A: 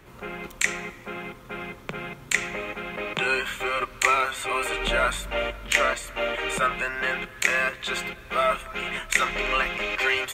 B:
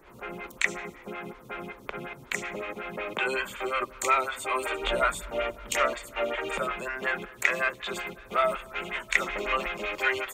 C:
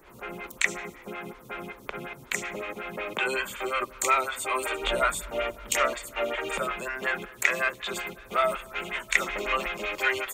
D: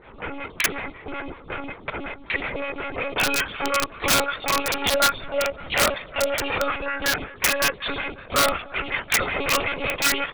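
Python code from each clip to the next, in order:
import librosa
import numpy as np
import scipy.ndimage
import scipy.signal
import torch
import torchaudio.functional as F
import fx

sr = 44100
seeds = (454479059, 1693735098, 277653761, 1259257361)

y1 = fx.stagger_phaser(x, sr, hz=5.4)
y2 = fx.high_shelf(y1, sr, hz=5500.0, db=7.0)
y3 = fx.lpc_monotone(y2, sr, seeds[0], pitch_hz=280.0, order=16)
y3 = (np.mod(10.0 ** (17.5 / 20.0) * y3 + 1.0, 2.0) - 1.0) / 10.0 ** (17.5 / 20.0)
y3 = F.gain(torch.from_numpy(y3), 6.0).numpy()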